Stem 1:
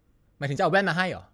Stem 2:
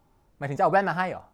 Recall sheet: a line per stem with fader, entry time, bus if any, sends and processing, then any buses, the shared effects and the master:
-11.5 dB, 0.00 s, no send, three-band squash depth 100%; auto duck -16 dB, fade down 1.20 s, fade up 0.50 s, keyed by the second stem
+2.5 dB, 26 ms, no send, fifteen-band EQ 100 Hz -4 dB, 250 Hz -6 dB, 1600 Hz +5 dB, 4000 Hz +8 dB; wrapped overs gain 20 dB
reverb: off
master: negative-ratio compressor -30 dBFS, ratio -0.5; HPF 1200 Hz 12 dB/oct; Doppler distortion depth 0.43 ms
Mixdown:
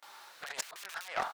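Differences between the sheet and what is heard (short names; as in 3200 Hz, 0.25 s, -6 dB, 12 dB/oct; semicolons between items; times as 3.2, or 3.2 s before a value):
stem 1: missing three-band squash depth 100%; stem 2 +2.5 dB -> +9.0 dB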